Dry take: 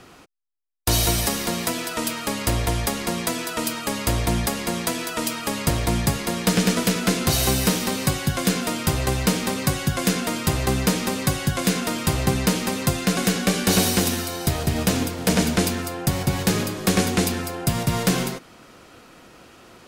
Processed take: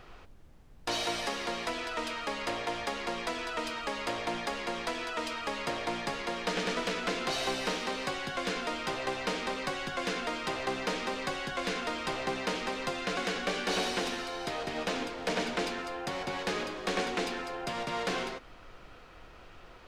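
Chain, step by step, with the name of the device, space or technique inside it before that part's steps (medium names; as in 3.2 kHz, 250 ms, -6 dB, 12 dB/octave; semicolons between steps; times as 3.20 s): aircraft cabin announcement (band-pass 410–3700 Hz; saturation -17.5 dBFS, distortion -18 dB; brown noise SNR 18 dB); trim -4.5 dB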